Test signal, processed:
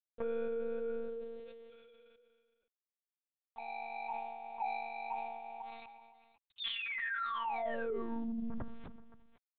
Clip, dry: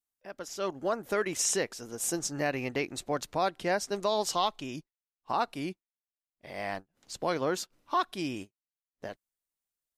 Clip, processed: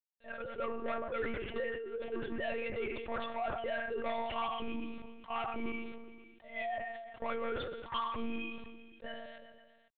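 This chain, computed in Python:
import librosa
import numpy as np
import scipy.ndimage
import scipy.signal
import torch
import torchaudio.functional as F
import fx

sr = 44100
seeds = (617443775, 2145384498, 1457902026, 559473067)

p1 = fx.sine_speech(x, sr)
p2 = fx.env_lowpass(p1, sr, base_hz=1000.0, full_db=-27.5)
p3 = fx.rev_gated(p2, sr, seeds[0], gate_ms=270, shape='falling', drr_db=9.5)
p4 = fx.over_compress(p3, sr, threshold_db=-37.0, ratio=-1.0)
p5 = p3 + F.gain(torch.from_numpy(p4), -1.0).numpy()
p6 = 10.0 ** (-26.5 / 20.0) * np.tanh(p5 / 10.0 ** (-26.5 / 20.0))
p7 = fx.quant_dither(p6, sr, seeds[1], bits=10, dither='none')
p8 = p7 + fx.echo_feedback(p7, sr, ms=129, feedback_pct=57, wet_db=-23.5, dry=0)
p9 = fx.lpc_monotone(p8, sr, seeds[2], pitch_hz=230.0, order=10)
p10 = fx.sustainer(p9, sr, db_per_s=35.0)
y = F.gain(torch.from_numpy(p10), -5.5).numpy()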